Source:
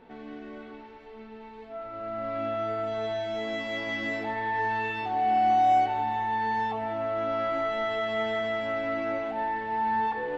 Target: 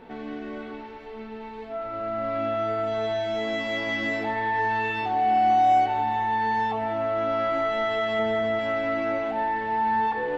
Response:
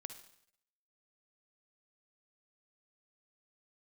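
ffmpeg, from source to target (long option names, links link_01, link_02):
-filter_complex "[0:a]asettb=1/sr,asplit=3[link_01][link_02][link_03];[link_01]atrim=end=8.194[link_04];[link_02]atrim=start=8.19:end=8.59,asetpts=PTS-STARTPTS,afade=type=in:duration=0.004:curve=qsin,afade=type=out:start_time=0.396:duration=0.004:curve=qsin,tiltshelf=frequency=970:gain=4[link_05];[link_03]atrim=start=8.586[link_06];[link_04][link_05]acrossfade=duration=0.004:curve1=hsin:curve2=qsin[link_07];[link_07][link_06]acrossfade=duration=0.004:curve1=qsin:curve2=hsin,asplit=2[link_08][link_09];[link_09]acompressor=threshold=-36dB:ratio=6,volume=-0.5dB[link_10];[link_08][link_10]amix=inputs=2:normalize=0,volume=1dB"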